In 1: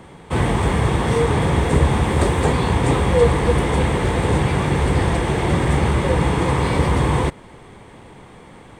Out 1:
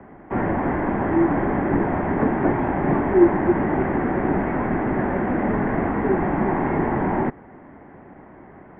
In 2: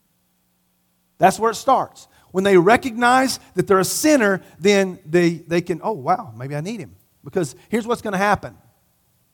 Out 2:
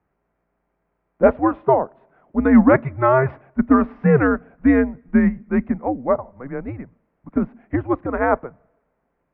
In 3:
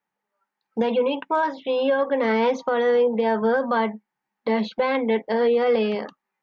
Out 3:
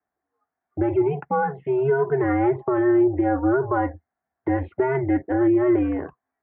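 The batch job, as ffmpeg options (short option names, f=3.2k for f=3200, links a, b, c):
-af "highpass=f=340:t=q:w=0.5412,highpass=f=340:t=q:w=1.307,lowpass=f=2.2k:t=q:w=0.5176,lowpass=f=2.2k:t=q:w=0.7071,lowpass=f=2.2k:t=q:w=1.932,afreqshift=-130,aemphasis=mode=reproduction:type=bsi,volume=-1dB"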